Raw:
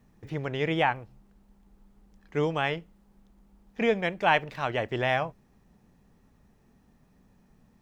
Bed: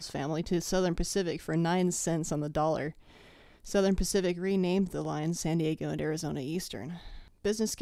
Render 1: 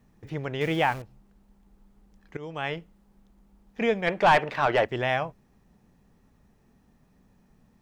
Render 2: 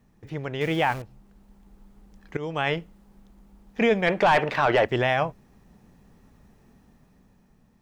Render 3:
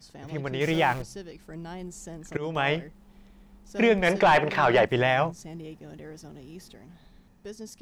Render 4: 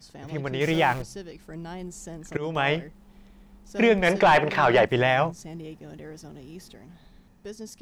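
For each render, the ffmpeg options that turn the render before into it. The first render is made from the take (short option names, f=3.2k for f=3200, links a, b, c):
-filter_complex "[0:a]asettb=1/sr,asplit=3[a][b][c];[a]atrim=end=0.614[d];[b]atrim=start=0.61:end=1.02,asetpts=PTS-STARTPTS,afade=t=in:d=0.004:c=qsin,afade=t=out:st=0.406:d=0.004:c=qsin,aeval=exprs='val(0)+0.5*0.0141*sgn(val(0))':c=same[e];[c]atrim=start=1.016[f];[d][e]acrossfade=d=0.004:c1=hsin:c2=qsin[g];[g][f]acrossfade=d=0.004:c1=qsin:c2=hsin,asplit=3[h][i][j];[h]afade=t=out:st=4.06:d=0.02[k];[i]asplit=2[l][m];[m]highpass=f=720:p=1,volume=20dB,asoftclip=type=tanh:threshold=-8.5dB[n];[l][n]amix=inputs=2:normalize=0,lowpass=f=1.5k:p=1,volume=-6dB,afade=t=in:st=4.06:d=0.02,afade=t=out:st=4.84:d=0.02[o];[j]afade=t=in:st=4.84:d=0.02[p];[k][o][p]amix=inputs=3:normalize=0,asplit=2[q][r];[q]atrim=end=2.37,asetpts=PTS-STARTPTS,afade=t=out:st=2.366:d=0.004:c=hsin:silence=0.0891251[s];[r]atrim=start=2.37,asetpts=PTS-STARTPTS,afade=t=in:d=0.42:silence=0.0891251[t];[s][t]concat=n=2:v=0:a=1"
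-af "dynaudnorm=f=200:g=11:m=6.5dB,alimiter=limit=-12dB:level=0:latency=1:release=13"
-filter_complex "[1:a]volume=-11dB[a];[0:a][a]amix=inputs=2:normalize=0"
-af "volume=1.5dB"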